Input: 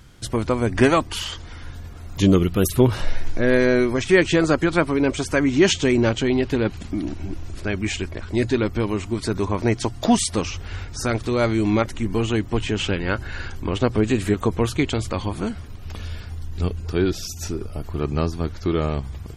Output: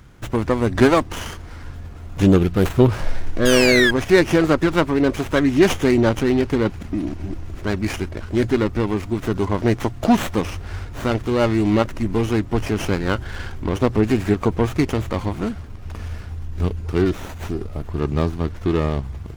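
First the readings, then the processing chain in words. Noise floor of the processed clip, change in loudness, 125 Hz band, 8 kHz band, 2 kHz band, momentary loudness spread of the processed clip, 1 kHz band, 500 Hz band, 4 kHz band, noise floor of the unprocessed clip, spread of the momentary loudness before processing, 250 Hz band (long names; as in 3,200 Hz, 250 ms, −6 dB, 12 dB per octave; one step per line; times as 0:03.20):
−35 dBFS, +2.0 dB, +2.0 dB, −3.0 dB, +2.0 dB, 16 LU, +2.0 dB, +2.0 dB, +0.5 dB, −36 dBFS, 14 LU, +2.0 dB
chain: sound drawn into the spectrogram fall, 0:03.45–0:03.91, 1,600–3,400 Hz −16 dBFS
windowed peak hold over 9 samples
level +2 dB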